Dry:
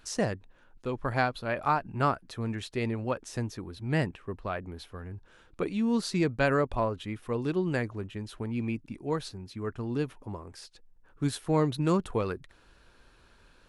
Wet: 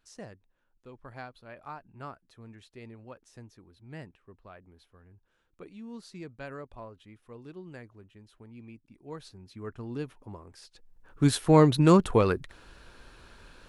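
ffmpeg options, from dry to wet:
-af "volume=2.24,afade=t=in:st=8.9:d=0.77:silence=0.281838,afade=t=in:st=10.61:d=0.71:silence=0.251189"

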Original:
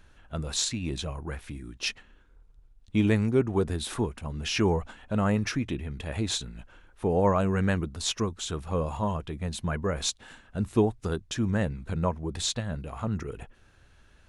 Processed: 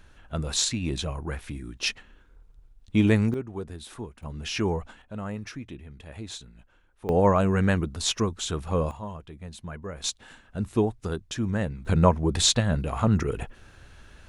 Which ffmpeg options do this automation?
-af "asetnsamples=n=441:p=0,asendcmd='3.34 volume volume -9dB;4.23 volume volume -2dB;5.02 volume volume -9dB;7.09 volume volume 3dB;8.91 volume volume -8dB;10.04 volume volume -0.5dB;11.85 volume volume 8.5dB',volume=1.41"

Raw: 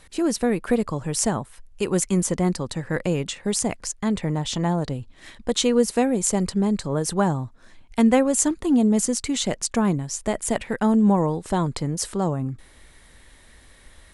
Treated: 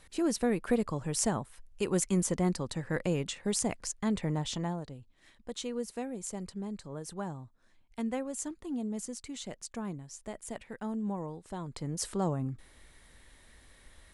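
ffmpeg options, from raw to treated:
-af "volume=1.41,afade=t=out:st=4.4:d=0.47:silence=0.316228,afade=t=in:st=11.65:d=0.42:silence=0.316228"

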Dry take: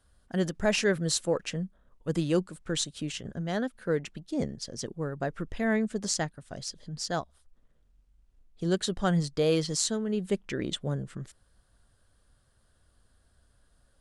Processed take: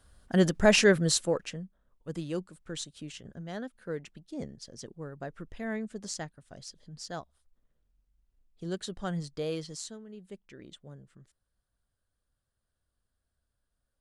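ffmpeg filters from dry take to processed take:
-af "volume=1.78,afade=t=out:st=0.81:d=0.81:silence=0.223872,afade=t=out:st=9.42:d=0.65:silence=0.354813"

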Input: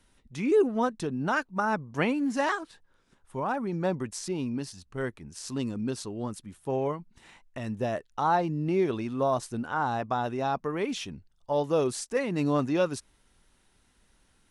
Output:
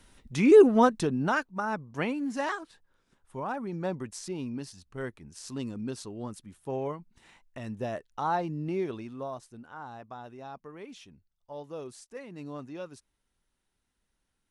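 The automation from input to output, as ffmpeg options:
-af "volume=2.11,afade=t=out:st=0.77:d=0.76:silence=0.298538,afade=t=out:st=8.61:d=0.83:silence=0.298538"

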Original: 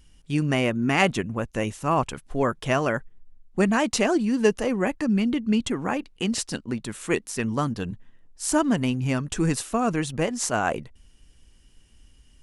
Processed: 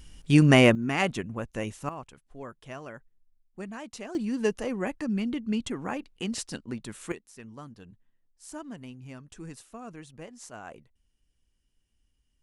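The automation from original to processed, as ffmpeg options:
-af "asetnsamples=n=441:p=0,asendcmd='0.75 volume volume -6dB;1.89 volume volume -18dB;4.15 volume volume -6.5dB;7.12 volume volume -19dB',volume=2"

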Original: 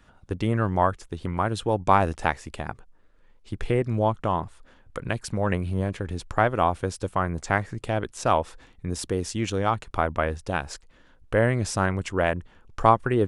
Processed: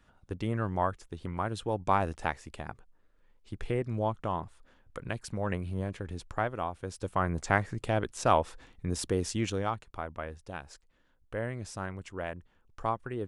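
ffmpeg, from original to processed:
-af "volume=1.58,afade=t=out:st=6.2:d=0.56:silence=0.473151,afade=t=in:st=6.76:d=0.54:silence=0.266073,afade=t=out:st=9.34:d=0.52:silence=0.281838"

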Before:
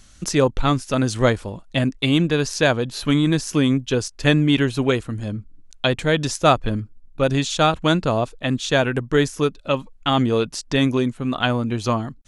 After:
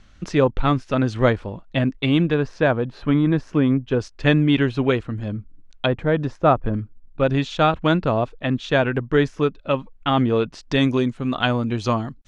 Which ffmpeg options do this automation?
-af "asetnsamples=n=441:p=0,asendcmd='2.34 lowpass f 1700;4 lowpass f 3100;5.86 lowpass f 1400;6.74 lowpass f 2800;10.63 lowpass f 5600',lowpass=2900"

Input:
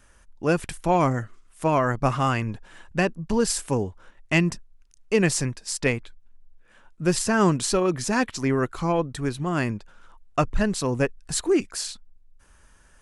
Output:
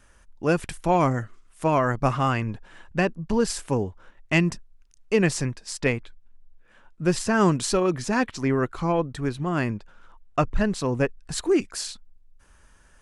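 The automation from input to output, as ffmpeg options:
-af "asetnsamples=n=441:p=0,asendcmd='2.12 lowpass f 4600;4.33 lowpass f 8700;5.15 lowpass f 4700;7.35 lowpass f 9500;7.98 lowpass f 4100;11.38 lowpass f 10000',lowpass=f=10000:p=1"

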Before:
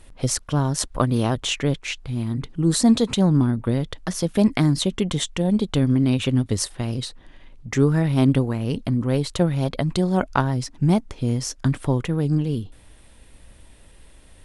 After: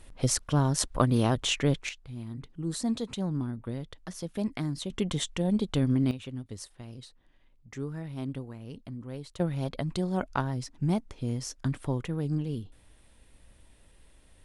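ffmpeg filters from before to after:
-af "asetnsamples=n=441:p=0,asendcmd='1.89 volume volume -13.5dB;4.9 volume volume -6.5dB;6.11 volume volume -18dB;9.4 volume volume -9dB',volume=0.668"

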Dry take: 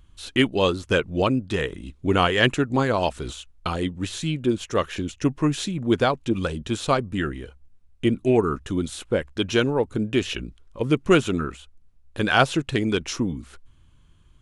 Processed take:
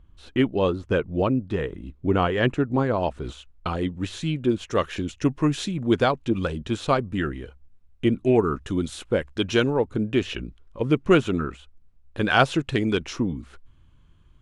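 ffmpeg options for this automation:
-af "asetnsamples=n=441:p=0,asendcmd='3.24 lowpass f 2100;3.9 lowpass f 3400;4.7 lowpass f 6100;6.12 lowpass f 3400;8.59 lowpass f 6700;9.76 lowpass f 2800;12.3 lowpass f 5000;13.07 lowpass f 2800',lowpass=f=1000:p=1"

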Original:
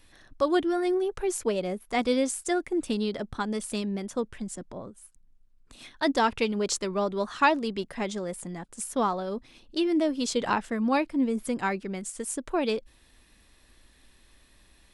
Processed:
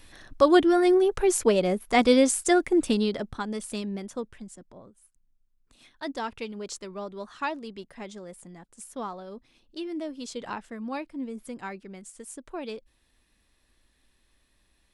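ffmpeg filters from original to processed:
-af "volume=2,afade=t=out:st=2.75:d=0.65:silence=0.398107,afade=t=out:st=3.96:d=0.61:silence=0.446684"

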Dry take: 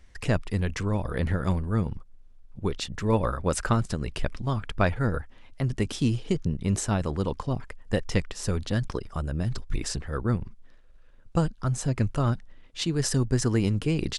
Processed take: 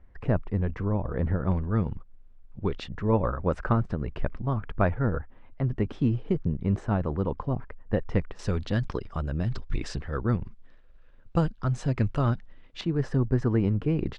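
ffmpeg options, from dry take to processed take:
-af "asetnsamples=n=441:p=0,asendcmd='1.51 lowpass f 2600;2.93 lowpass f 1500;8.39 lowpass f 3700;12.81 lowpass f 1500',lowpass=1200"

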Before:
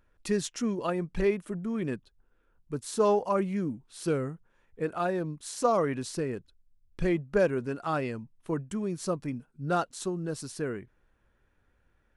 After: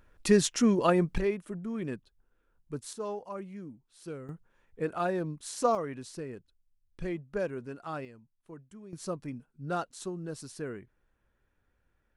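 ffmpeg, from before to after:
-af "asetnsamples=n=441:p=0,asendcmd='1.18 volume volume -3.5dB;2.93 volume volume -12.5dB;4.29 volume volume -1dB;5.75 volume volume -8dB;8.05 volume volume -16.5dB;8.93 volume volume -5dB',volume=2"

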